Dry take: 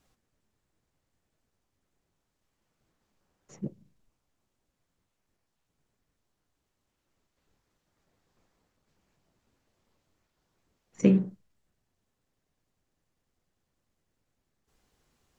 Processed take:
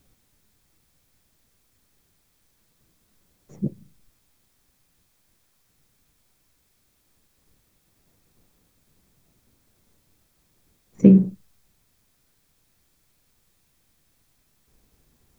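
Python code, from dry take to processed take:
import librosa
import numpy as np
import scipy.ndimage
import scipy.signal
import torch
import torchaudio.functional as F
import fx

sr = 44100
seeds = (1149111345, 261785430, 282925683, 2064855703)

y = fx.tilt_shelf(x, sr, db=8.5, hz=650.0)
y = fx.dmg_noise_colour(y, sr, seeds[0], colour='white', level_db=-71.0)
y = fx.notch(y, sr, hz=2900.0, q=19.0)
y = y * librosa.db_to_amplitude(2.5)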